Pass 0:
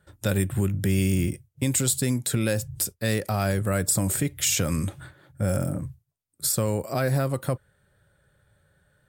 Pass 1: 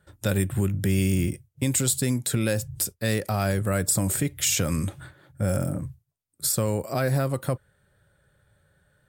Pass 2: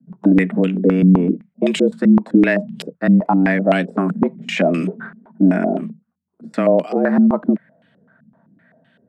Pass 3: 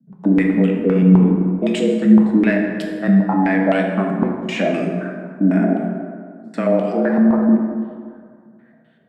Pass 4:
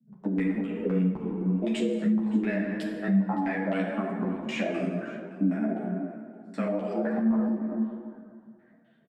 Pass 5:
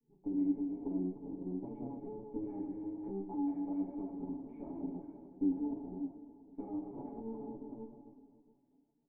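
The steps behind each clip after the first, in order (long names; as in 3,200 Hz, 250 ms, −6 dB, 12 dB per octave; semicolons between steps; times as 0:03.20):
no processing that can be heard
frequency shifter +88 Hz; low-pass on a step sequencer 7.8 Hz 210–3,000 Hz; level +6 dB
dense smooth reverb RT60 2 s, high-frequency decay 0.5×, DRR 0.5 dB; level −4 dB
downward compressor 6 to 1, threshold −16 dBFS, peak gain reduction 10 dB; single-tap delay 567 ms −20.5 dB; string-ensemble chorus; level −5 dB
lower of the sound and its delayed copy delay 7.1 ms; formant resonators in series u; level −2.5 dB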